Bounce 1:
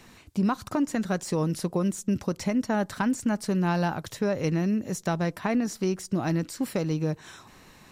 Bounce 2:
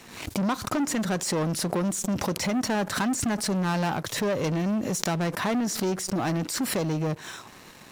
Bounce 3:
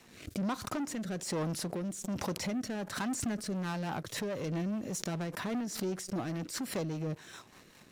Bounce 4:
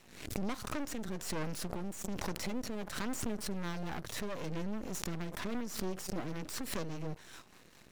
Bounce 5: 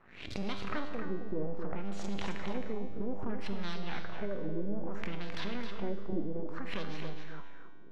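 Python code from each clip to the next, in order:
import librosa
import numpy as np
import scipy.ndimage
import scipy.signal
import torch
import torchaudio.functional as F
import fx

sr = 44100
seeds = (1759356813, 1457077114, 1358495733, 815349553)

y1 = fx.leveller(x, sr, passes=3)
y1 = fx.low_shelf(y1, sr, hz=88.0, db=-11.0)
y1 = fx.pre_swell(y1, sr, db_per_s=75.0)
y1 = F.gain(torch.from_numpy(y1), -4.0).numpy()
y2 = fx.rotary_switch(y1, sr, hz=1.2, then_hz=5.0, switch_at_s=3.22)
y2 = F.gain(torch.from_numpy(y2), -7.0).numpy()
y3 = np.maximum(y2, 0.0)
y3 = fx.pre_swell(y3, sr, db_per_s=84.0)
y3 = F.gain(torch.from_numpy(y3), 1.0).numpy()
y4 = fx.filter_lfo_lowpass(y3, sr, shape='sine', hz=0.61, low_hz=350.0, high_hz=4300.0, q=2.7)
y4 = fx.comb_fb(y4, sr, f0_hz=99.0, decay_s=1.7, harmonics='all', damping=0.0, mix_pct=80)
y4 = y4 + 10.0 ** (-7.0 / 20.0) * np.pad(y4, (int(265 * sr / 1000.0), 0))[:len(y4)]
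y4 = F.gain(torch.from_numpy(y4), 10.5).numpy()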